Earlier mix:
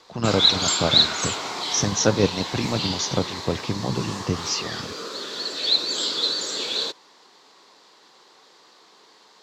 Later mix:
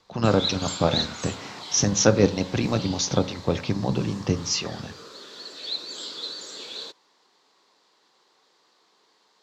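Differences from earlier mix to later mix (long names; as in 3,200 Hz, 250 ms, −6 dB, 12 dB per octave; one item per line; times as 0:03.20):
speech: send +10.5 dB
background −10.5 dB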